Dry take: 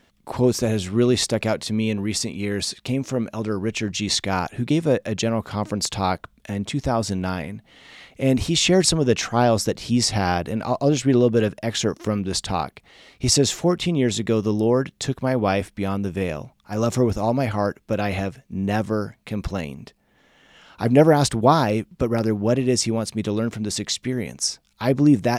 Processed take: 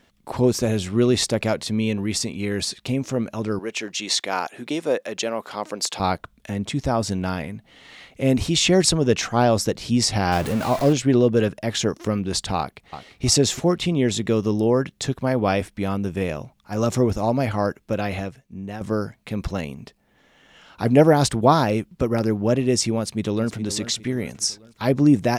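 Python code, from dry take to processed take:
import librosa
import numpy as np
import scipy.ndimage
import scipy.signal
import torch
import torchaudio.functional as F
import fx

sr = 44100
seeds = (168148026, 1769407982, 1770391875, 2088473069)

y = fx.highpass(x, sr, hz=390.0, slope=12, at=(3.59, 6.0))
y = fx.zero_step(y, sr, step_db=-25.5, at=(10.32, 10.93))
y = fx.echo_throw(y, sr, start_s=12.58, length_s=0.67, ms=340, feedback_pct=30, wet_db=-10.0)
y = fx.echo_throw(y, sr, start_s=22.99, length_s=0.6, ms=410, feedback_pct=45, wet_db=-13.0)
y = fx.edit(y, sr, fx.fade_out_to(start_s=17.81, length_s=1.0, floor_db=-12.5), tone=tone)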